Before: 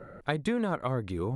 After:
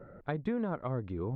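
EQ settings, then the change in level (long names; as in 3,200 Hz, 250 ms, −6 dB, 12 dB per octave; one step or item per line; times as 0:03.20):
head-to-tape spacing loss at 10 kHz 37 dB
−2.5 dB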